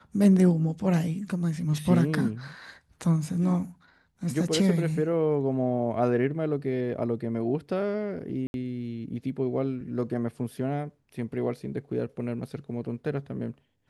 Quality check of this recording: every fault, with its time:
8.47–8.54 gap 71 ms

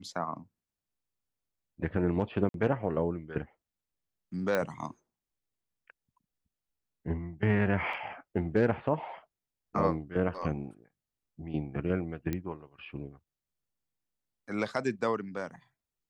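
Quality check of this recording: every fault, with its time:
2.49–2.54 gap 52 ms
4.55 pop -16 dBFS
7.93 gap 3.9 ms
12.33 pop -19 dBFS

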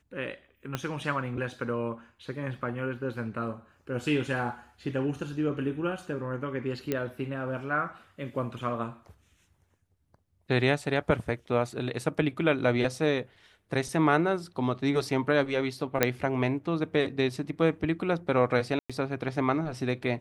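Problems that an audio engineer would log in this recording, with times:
0.75 pop -15 dBFS
6.92 pop -15 dBFS
16.03 pop -6 dBFS
18.79–18.9 gap 0.106 s

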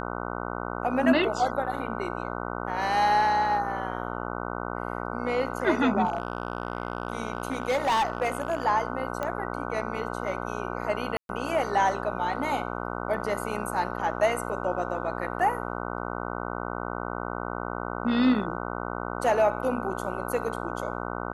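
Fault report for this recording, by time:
buzz 60 Hz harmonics 25 -33 dBFS
6.05–8.66 clipped -20.5 dBFS
9.23 pop -17 dBFS
11.17–11.29 gap 0.122 s

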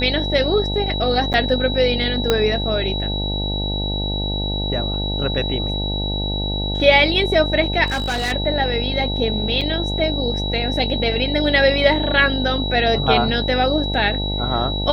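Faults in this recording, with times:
buzz 50 Hz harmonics 18 -24 dBFS
tone 3900 Hz -25 dBFS
1.33–1.34 gap 8.5 ms
2.3 pop -2 dBFS
7.86–8.33 clipped -18.5 dBFS
9.61–9.62 gap 5.3 ms

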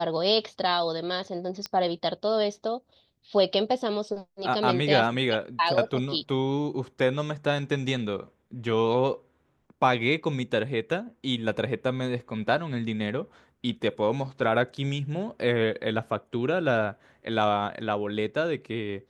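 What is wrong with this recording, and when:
1.66 pop -19 dBFS

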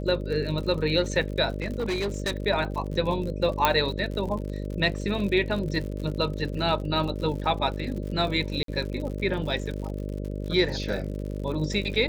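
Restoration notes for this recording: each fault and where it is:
buzz 50 Hz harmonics 12 -32 dBFS
crackle 74/s -34 dBFS
1.6–2.32 clipped -23.5 dBFS
3.65 pop -5 dBFS
8.63–8.68 gap 53 ms

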